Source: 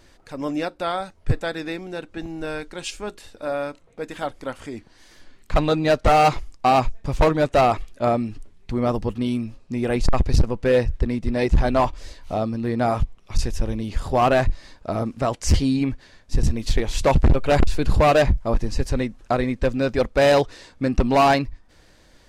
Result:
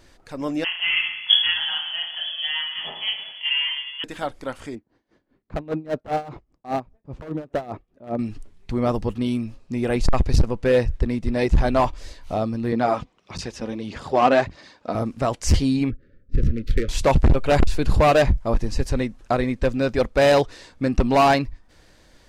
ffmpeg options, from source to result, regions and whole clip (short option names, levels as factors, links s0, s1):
-filter_complex "[0:a]asettb=1/sr,asplit=3[s0][s1][s2];[s0]atrim=end=0.644[s3];[s1]atrim=start=0.64:end=4.04,asetpts=PTS-STARTPTS,afade=t=in:d=0.004:c=qsin,afade=t=out:st=3.396:d=0.004:c=qsin,aemphasis=mode=reproduction:type=75kf,aecho=1:1:20|44|72.8|107.4|148.8|198.6|258.3|330|416:0.794|0.631|0.501|0.398|0.316|0.251|0.2|0.158|0.126,atrim=end_sample=149940,lowpass=f=2900:t=q:w=0.5098,lowpass=f=2900:t=q:w=0.6013,lowpass=f=2900:t=q:w=0.9,lowpass=f=2900:t=q:w=2.563,afreqshift=-3400[s4];[s2]atrim=start=4.036[s5];[s3][s4]acrossfade=d=0.004:c1=hsin:c2=qsin[s6];[s6][s5]acrossfade=d=0.004:c1=qsin:c2=hsin,asettb=1/sr,asplit=3[s7][s8][s9];[s7]atrim=end=4.754[s10];[s8]atrim=start=4.75:end=8.19,asetpts=PTS-STARTPTS,afade=t=in:d=0.004:c=qsin,afade=t=out:st=3.436:d=0.004:c=qsin,bandpass=f=270:t=q:w=0.64,aeval=exprs='0.168*(abs(mod(val(0)/0.168+3,4)-2)-1)':c=same,aeval=exprs='val(0)*pow(10,-19*(0.5-0.5*cos(2*PI*5*n/s))/20)':c=same[s11];[s9]atrim=start=8.186[s12];[s10][s11]acrossfade=d=0.004:c1=hsin:c2=qsin[s13];[s13][s12]acrossfade=d=0.004:c1=qsin:c2=hsin,asettb=1/sr,asplit=3[s14][s15][s16];[s14]atrim=end=12.724[s17];[s15]atrim=start=12.72:end=14.95,asetpts=PTS-STARTPTS,afade=t=in:d=0.004:c=qsin,afade=t=out:st=2.226:d=0.004:c=qsin,aphaser=in_gain=1:out_gain=1:delay=4.1:decay=0.41:speed=1.6:type=sinusoidal,highpass=180,lowpass=6200[s18];[s16]atrim=start=14.946[s19];[s17][s18]acrossfade=d=0.004:c1=hsin:c2=qsin[s20];[s20][s19]acrossfade=d=0.004:c1=qsin:c2=hsin,asettb=1/sr,asplit=3[s21][s22][s23];[s21]atrim=end=15.904[s24];[s22]atrim=start=15.9:end=16.89,asetpts=PTS-STARTPTS,afade=t=in:d=0.004:c=qsin,afade=t=out:st=0.986:d=0.004:c=qsin,adynamicsmooth=sensitivity=3:basefreq=610,asuperstop=centerf=840:order=20:qfactor=1.3[s25];[s23]atrim=start=16.886[s26];[s24][s25]acrossfade=d=0.004:c1=hsin:c2=qsin[s27];[s27][s26]acrossfade=d=0.004:c1=qsin:c2=hsin"